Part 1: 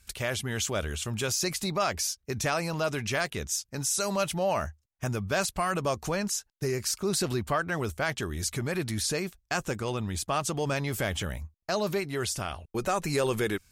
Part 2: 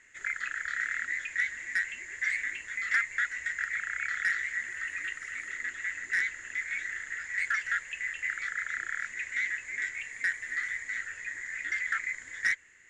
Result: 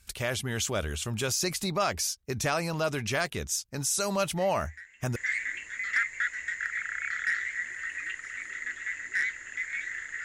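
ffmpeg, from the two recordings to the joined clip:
-filter_complex "[1:a]asplit=2[a][b];[0:a]apad=whole_dur=10.24,atrim=end=10.24,atrim=end=5.162[c];[b]atrim=start=2.138:end=7.22[d];[a]atrim=start=1.34:end=2.14,asetpts=PTS-STARTPTS,volume=-17.5dB,afade=t=in:d=0.004:c=hsin,afade=t=out:st=0.796:d=0.004:c=hsin,adelay=4360[e];[c][d]acrossfade=d=0.004:c1=hsin:c2=hsin[f];[f][e]amix=inputs=2:normalize=0"

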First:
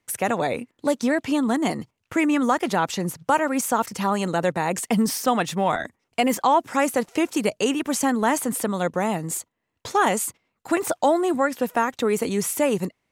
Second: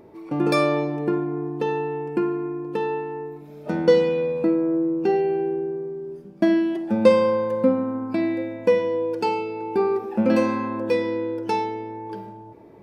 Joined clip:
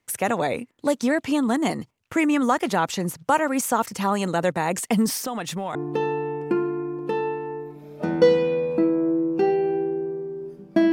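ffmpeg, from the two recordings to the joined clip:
-filter_complex "[0:a]asettb=1/sr,asplit=3[a][b][c];[a]atrim=end=5.254[d];[b]atrim=start=5.25:end=5.75,asetpts=PTS-STARTPTS,afade=t=in:d=0.004:c=qsin,afade=t=out:st=0.496:d=0.004:c=qsin,acompressor=threshold=-25dB:ratio=5:attack=3.2:release=140:knee=1:detection=peak[e];[c]atrim=start=5.746[f];[d][e]acrossfade=d=0.004:c1=hsin:c2=qsin[g];[g][f]acrossfade=d=0.004:c1=qsin:c2=hsin,apad=whole_dur=10.92,atrim=end=10.92,atrim=end=5.752[h];[1:a]atrim=start=1.408:end=6.58[i];[h][i]acrossfade=d=0.004:c1=hsin:c2=hsin"

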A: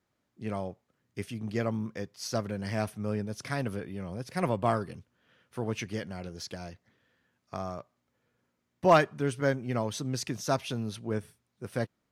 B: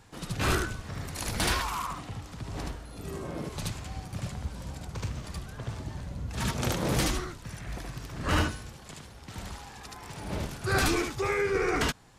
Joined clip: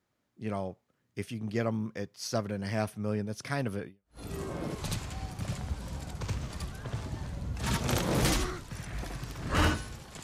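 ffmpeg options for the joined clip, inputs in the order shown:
-filter_complex "[0:a]apad=whole_dur=10.23,atrim=end=10.23,atrim=end=4.19,asetpts=PTS-STARTPTS[a];[1:a]atrim=start=2.61:end=8.97,asetpts=PTS-STARTPTS[b];[a][b]acrossfade=d=0.32:c1=exp:c2=exp"

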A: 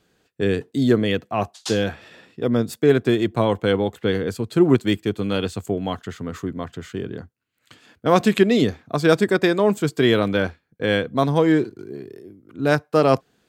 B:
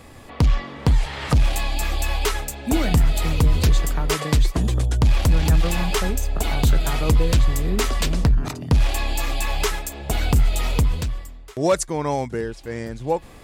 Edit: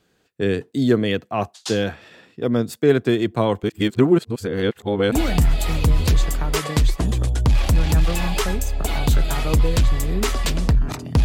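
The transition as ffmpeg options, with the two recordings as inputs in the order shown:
-filter_complex "[0:a]apad=whole_dur=11.24,atrim=end=11.24,asplit=2[a][b];[a]atrim=end=3.632[c];[b]atrim=start=3.628:end=5.122,asetpts=PTS-STARTPTS,areverse[d];[1:a]atrim=start=2.678:end=8.8[e];[c][d]acrossfade=d=0.004:c1=hsin:c2=hsin[f];[f][e]acrossfade=d=0.004:c1=hsin:c2=hsin"

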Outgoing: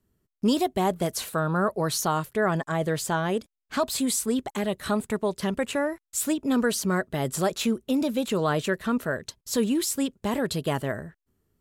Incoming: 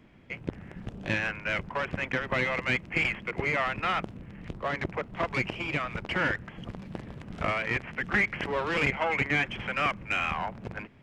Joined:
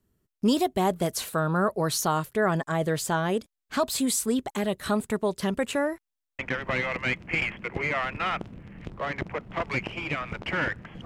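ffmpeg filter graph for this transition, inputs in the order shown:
-filter_complex "[0:a]apad=whole_dur=11.05,atrim=end=11.05,asplit=4[a][b][c][d];[a]atrim=end=6.122[e];[b]atrim=start=6.028:end=6.122[f];[c]atrim=start=6.028:end=6.122[g];[d]atrim=start=6.028:end=6.122[h];[1:a]atrim=start=2.018:end=6.68[i];[e][f]acrossfade=d=0.004:c1=hsin:c2=hsin[j];[j][g]acrossfade=d=0.004:c1=hsin:c2=hsin[k];[k][h]acrossfade=d=0.004:c1=hsin:c2=hsin[l];[l][i]acrossfade=d=0.004:c1=hsin:c2=hsin"

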